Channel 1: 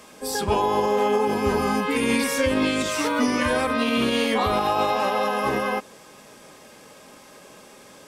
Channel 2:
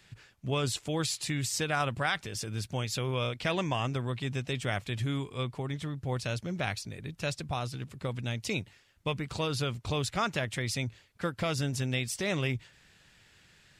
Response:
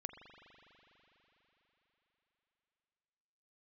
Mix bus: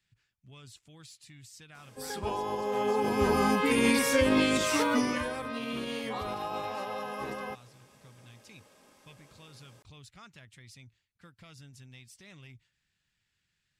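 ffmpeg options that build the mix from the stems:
-filter_complex "[0:a]adelay=1750,volume=-2.5dB,afade=type=in:start_time=2.62:duration=0.78:silence=0.354813,afade=type=out:start_time=4.79:duration=0.52:silence=0.281838[link_01];[1:a]equalizer=frequency=540:width_type=o:width=1.8:gain=-9.5,asoftclip=type=tanh:threshold=-20dB,volume=-18dB[link_02];[link_01][link_02]amix=inputs=2:normalize=0"

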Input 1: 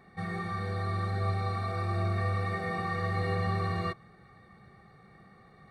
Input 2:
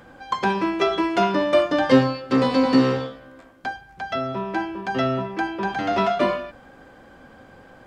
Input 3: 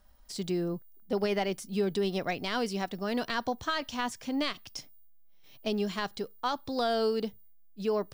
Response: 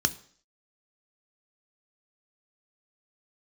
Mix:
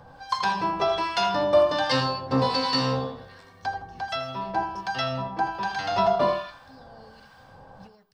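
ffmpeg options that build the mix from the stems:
-filter_complex "[0:a]equalizer=frequency=400:width_type=o:width=0.77:gain=6.5,adelay=150,volume=-18dB[link_01];[1:a]equalizer=frequency=250:width_type=o:width=1:gain=-7,equalizer=frequency=1000:width_type=o:width=1:gain=10,equalizer=frequency=2000:width_type=o:width=1:gain=-9,equalizer=frequency=4000:width_type=o:width=1:gain=6,volume=1dB,asplit=3[link_02][link_03][link_04];[link_03]volume=-15.5dB[link_05];[link_04]volume=-12.5dB[link_06];[2:a]alimiter=level_in=4.5dB:limit=-24dB:level=0:latency=1:release=329,volume=-4.5dB,volume=-10.5dB,asplit=2[link_07][link_08];[link_08]volume=-11.5dB[link_09];[3:a]atrim=start_sample=2205[link_10];[link_05][link_09]amix=inputs=2:normalize=0[link_11];[link_11][link_10]afir=irnorm=-1:irlink=0[link_12];[link_06]aecho=0:1:81|162|243|324|405|486:1|0.42|0.176|0.0741|0.0311|0.0131[link_13];[link_01][link_02][link_07][link_12][link_13]amix=inputs=5:normalize=0,acrossover=split=1200[link_14][link_15];[link_14]aeval=exprs='val(0)*(1-0.7/2+0.7/2*cos(2*PI*1.3*n/s))':channel_layout=same[link_16];[link_15]aeval=exprs='val(0)*(1-0.7/2-0.7/2*cos(2*PI*1.3*n/s))':channel_layout=same[link_17];[link_16][link_17]amix=inputs=2:normalize=0"

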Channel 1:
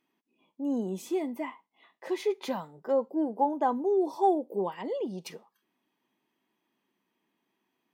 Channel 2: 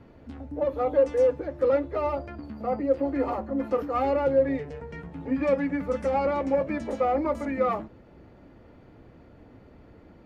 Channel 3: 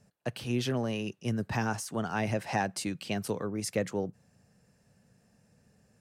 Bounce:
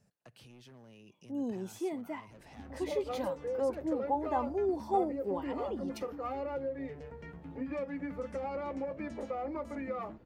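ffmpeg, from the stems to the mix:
ffmpeg -i stem1.wav -i stem2.wav -i stem3.wav -filter_complex "[0:a]adelay=700,volume=-5.5dB[link_01];[1:a]acompressor=threshold=-26dB:ratio=5,adelay=2300,volume=-8dB[link_02];[2:a]asoftclip=type=hard:threshold=-27dB,alimiter=level_in=12.5dB:limit=-24dB:level=0:latency=1:release=81,volume=-12.5dB,acompressor=threshold=-46dB:ratio=6,volume=-7dB[link_03];[link_01][link_02][link_03]amix=inputs=3:normalize=0" out.wav

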